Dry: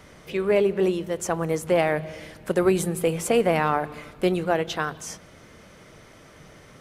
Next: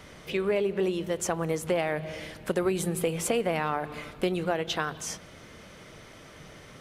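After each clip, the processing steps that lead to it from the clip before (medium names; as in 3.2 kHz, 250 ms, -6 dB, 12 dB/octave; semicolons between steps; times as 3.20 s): peaking EQ 3.3 kHz +3.5 dB 1.1 oct; compression 3:1, threshold -25 dBFS, peak gain reduction 8 dB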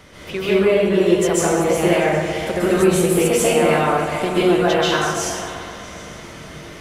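on a send: delay with an opening low-pass 129 ms, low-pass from 400 Hz, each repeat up 1 oct, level -6 dB; on the sum: plate-style reverb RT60 0.96 s, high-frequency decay 0.9×, pre-delay 120 ms, DRR -8.5 dB; trim +2.5 dB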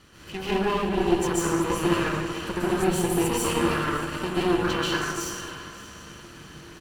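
comb filter that takes the minimum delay 0.69 ms; feedback comb 340 Hz, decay 0.18 s, harmonics odd, mix 60%; delay 570 ms -18 dB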